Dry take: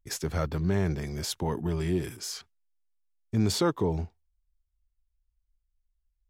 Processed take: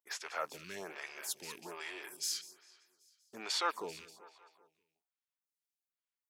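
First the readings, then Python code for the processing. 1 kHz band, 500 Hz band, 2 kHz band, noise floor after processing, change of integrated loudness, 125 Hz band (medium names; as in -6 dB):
-3.5 dB, -14.0 dB, -1.0 dB, under -85 dBFS, -10.0 dB, -35.0 dB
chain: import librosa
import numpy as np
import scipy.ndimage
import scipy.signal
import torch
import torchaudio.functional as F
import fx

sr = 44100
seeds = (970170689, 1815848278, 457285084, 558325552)

y = fx.rattle_buzz(x, sr, strikes_db=-36.0, level_db=-37.0)
y = scipy.signal.sosfilt(scipy.signal.butter(2, 910.0, 'highpass', fs=sr, output='sos'), y)
y = fx.echo_feedback(y, sr, ms=194, feedback_pct=56, wet_db=-16.0)
y = fx.stagger_phaser(y, sr, hz=1.2)
y = y * 10.0 ** (1.0 / 20.0)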